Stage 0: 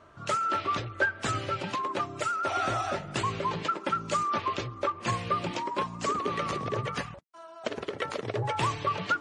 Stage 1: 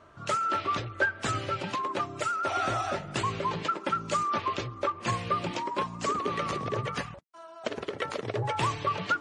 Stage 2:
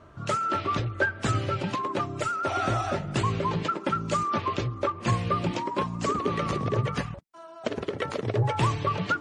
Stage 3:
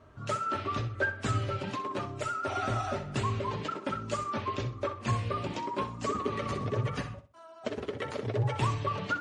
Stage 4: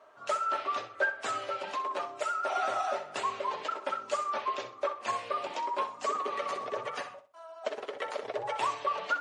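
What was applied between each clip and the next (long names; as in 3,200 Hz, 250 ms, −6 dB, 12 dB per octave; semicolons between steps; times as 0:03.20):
no processing that can be heard
low-shelf EQ 350 Hz +9.5 dB
notch comb filter 170 Hz; on a send: flutter between parallel walls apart 10.8 metres, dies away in 0.33 s; on the sum: level −4 dB
high-pass with resonance 650 Hz, resonance Q 1.6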